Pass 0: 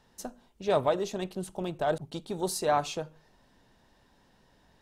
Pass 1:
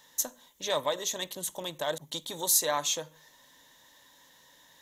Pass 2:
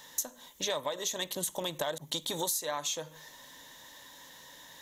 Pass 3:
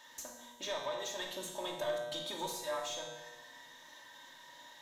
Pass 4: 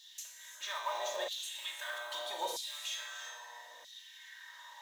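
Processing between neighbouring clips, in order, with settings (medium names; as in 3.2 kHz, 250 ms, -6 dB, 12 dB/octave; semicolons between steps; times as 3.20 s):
rippled EQ curve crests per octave 1.1, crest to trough 9 dB; in parallel at +2.5 dB: compression, threshold -35 dBFS, peak gain reduction 14.5 dB; on the sum: tilt EQ +4 dB/octave; trim -5 dB
compression 10:1, threshold -37 dBFS, peak gain reduction 17.5 dB; trim +7 dB
feedback comb 120 Hz, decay 1.2 s, harmonics all, mix 80%; overdrive pedal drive 14 dB, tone 2.8 kHz, clips at -28 dBFS; reverberation RT60 0.70 s, pre-delay 3 ms, DRR 0.5 dB
block-companded coder 5-bit; gated-style reverb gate 370 ms rising, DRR 6 dB; LFO high-pass saw down 0.78 Hz 510–4100 Hz; trim -1 dB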